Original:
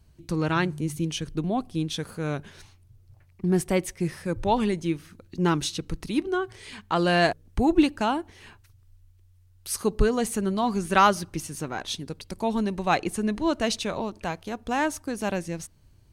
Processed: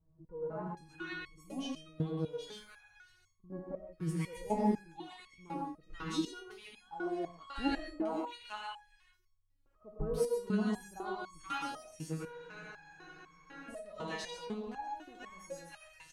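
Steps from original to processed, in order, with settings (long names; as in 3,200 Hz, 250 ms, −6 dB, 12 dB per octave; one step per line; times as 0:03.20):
high-shelf EQ 5,600 Hz −10.5 dB
multiband delay without the direct sound lows, highs 480 ms, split 1,100 Hz
reverb whose tail is shaped and stops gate 160 ms rising, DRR −0.5 dB
frozen spectrum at 0:12.26, 1.43 s
step-sequenced resonator 4 Hz 160–1,100 Hz
level +1 dB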